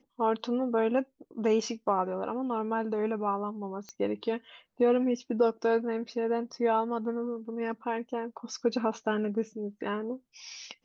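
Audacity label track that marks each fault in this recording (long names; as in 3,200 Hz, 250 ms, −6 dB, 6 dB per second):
3.890000	3.890000	click −28 dBFS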